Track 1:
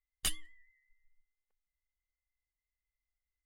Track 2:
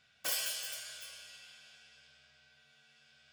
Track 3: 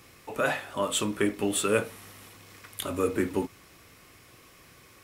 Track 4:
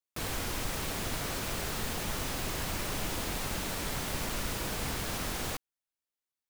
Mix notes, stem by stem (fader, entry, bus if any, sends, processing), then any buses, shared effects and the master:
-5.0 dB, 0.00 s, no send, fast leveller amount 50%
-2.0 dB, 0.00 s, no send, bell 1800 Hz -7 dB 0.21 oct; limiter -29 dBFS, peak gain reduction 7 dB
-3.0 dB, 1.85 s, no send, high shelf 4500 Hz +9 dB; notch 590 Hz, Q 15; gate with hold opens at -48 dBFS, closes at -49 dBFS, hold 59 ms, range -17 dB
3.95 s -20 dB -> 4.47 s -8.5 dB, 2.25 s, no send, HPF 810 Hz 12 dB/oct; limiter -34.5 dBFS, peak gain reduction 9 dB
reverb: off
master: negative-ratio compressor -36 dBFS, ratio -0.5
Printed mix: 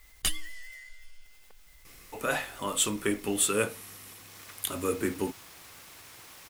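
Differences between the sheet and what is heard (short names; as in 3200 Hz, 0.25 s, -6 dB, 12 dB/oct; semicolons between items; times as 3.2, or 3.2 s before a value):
stem 1 -5.0 dB -> +4.5 dB; stem 2 -2.0 dB -> -14.0 dB; master: missing negative-ratio compressor -36 dBFS, ratio -0.5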